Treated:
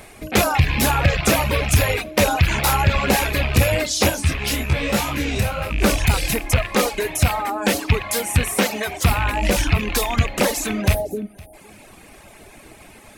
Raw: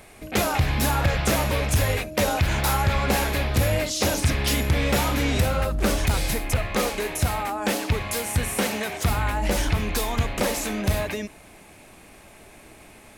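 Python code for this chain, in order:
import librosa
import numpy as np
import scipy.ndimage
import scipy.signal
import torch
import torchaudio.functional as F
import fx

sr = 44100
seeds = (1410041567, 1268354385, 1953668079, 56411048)

p1 = fx.rattle_buzz(x, sr, strikes_db=-26.0, level_db=-17.0)
p2 = fx.dereverb_blind(p1, sr, rt60_s=0.92)
p3 = fx.spec_erase(p2, sr, start_s=10.94, length_s=0.6, low_hz=860.0, high_hz=8600.0)
p4 = p3 + fx.echo_single(p3, sr, ms=512, db=-24.0, dry=0)
p5 = fx.detune_double(p4, sr, cents=35, at=(4.09, 5.69), fade=0.02)
y = p5 * 10.0 ** (6.0 / 20.0)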